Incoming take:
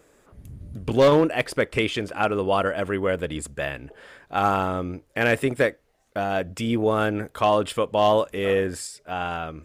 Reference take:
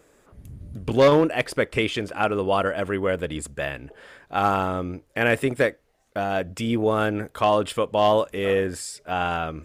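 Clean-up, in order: clip repair -9 dBFS; gain 0 dB, from 8.87 s +3.5 dB

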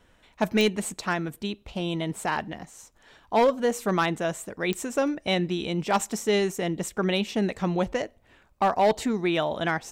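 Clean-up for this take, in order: clip repair -15 dBFS; de-click

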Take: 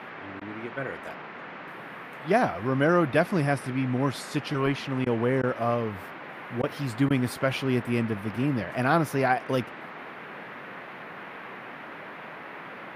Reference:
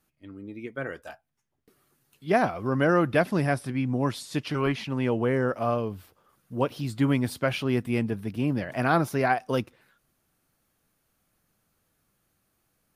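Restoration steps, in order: interpolate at 0.4/5.05/5.42/6.62/7.09, 12 ms; noise print and reduce 30 dB

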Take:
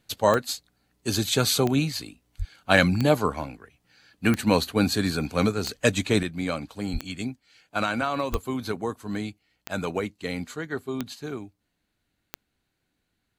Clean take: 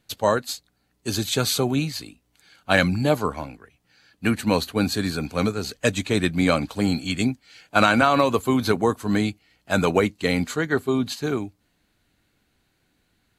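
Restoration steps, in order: de-click; 2.38–2.5 HPF 140 Hz 24 dB/oct; 6.92–7.04 HPF 140 Hz 24 dB/oct; 8.31–8.43 HPF 140 Hz 24 dB/oct; gain 0 dB, from 6.23 s +9 dB

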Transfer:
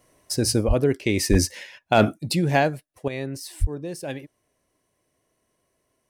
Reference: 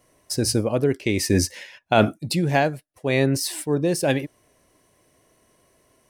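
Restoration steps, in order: clip repair -7 dBFS; de-plosive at 0.67/1.3/3.6; gain correction +11 dB, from 3.08

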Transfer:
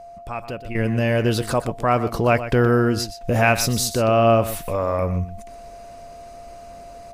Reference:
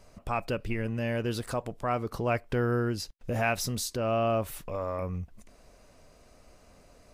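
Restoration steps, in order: notch 690 Hz, Q 30; inverse comb 0.122 s -12.5 dB; gain correction -10.5 dB, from 0.75

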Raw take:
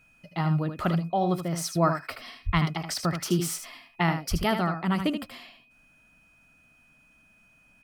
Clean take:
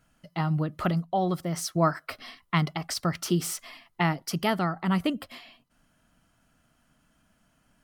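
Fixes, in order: notch 2500 Hz, Q 30; de-plosive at 2.45/4.3; inverse comb 77 ms -8 dB

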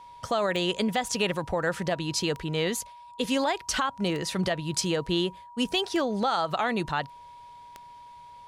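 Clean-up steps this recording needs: de-click; notch 960 Hz, Q 30

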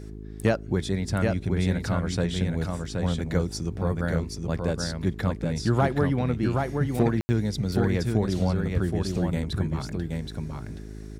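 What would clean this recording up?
clip repair -10.5 dBFS; de-hum 52.7 Hz, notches 8; room tone fill 7.21–7.29; inverse comb 0.774 s -4 dB

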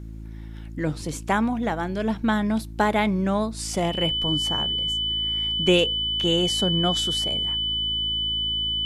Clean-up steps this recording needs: de-hum 54.7 Hz, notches 6; notch 3000 Hz, Q 30

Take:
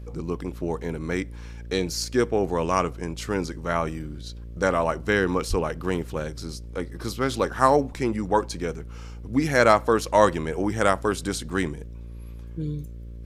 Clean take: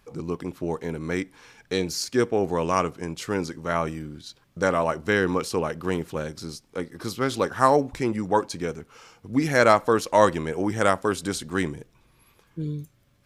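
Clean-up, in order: de-hum 57.7 Hz, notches 10; 5.49–5.61 HPF 140 Hz 24 dB/oct

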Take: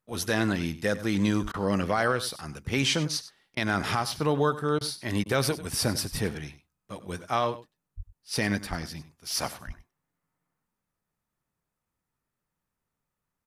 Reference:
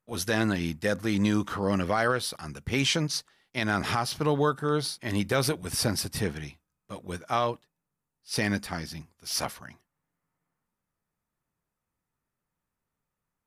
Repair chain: de-plosive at 1.42/6.11/7.96/8.69/9.66; interpolate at 1.52/3.55/4.79/5.24, 18 ms; inverse comb 97 ms -15.5 dB

